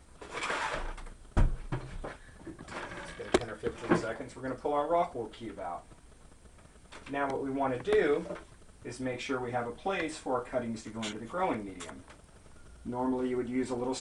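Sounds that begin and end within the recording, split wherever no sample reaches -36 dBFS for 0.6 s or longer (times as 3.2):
6.98–11.9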